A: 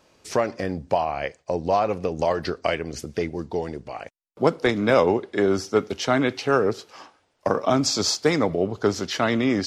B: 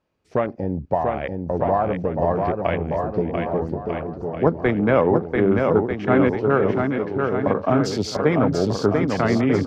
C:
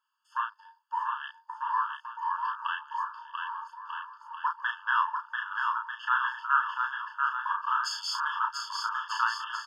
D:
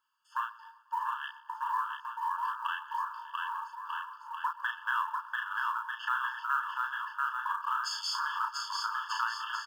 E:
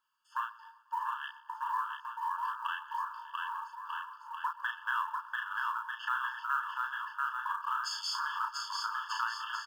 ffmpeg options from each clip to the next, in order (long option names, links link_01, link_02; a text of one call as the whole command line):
ffmpeg -i in.wav -filter_complex "[0:a]afwtdn=0.0316,bass=frequency=250:gain=6,treble=frequency=4000:gain=-12,asplit=2[link_01][link_02];[link_02]aecho=0:1:690|1242|1684|2037|2320:0.631|0.398|0.251|0.158|0.1[link_03];[link_01][link_03]amix=inputs=2:normalize=0" out.wav
ffmpeg -i in.wav -filter_complex "[0:a]asplit=2[link_01][link_02];[link_02]adelay=34,volume=-4dB[link_03];[link_01][link_03]amix=inputs=2:normalize=0,afftfilt=real='re*eq(mod(floor(b*sr/1024/890),2),1)':imag='im*eq(mod(floor(b*sr/1024/890),2),1)':win_size=1024:overlap=0.75" out.wav
ffmpeg -i in.wav -af "acompressor=threshold=-33dB:ratio=2,aecho=1:1:123|246|369|492:0.112|0.0606|0.0327|0.0177,acrusher=bits=8:mode=log:mix=0:aa=0.000001,volume=1dB" out.wav
ffmpeg -i in.wav -af "asubboost=boost=2.5:cutoff=170,volume=-1.5dB" out.wav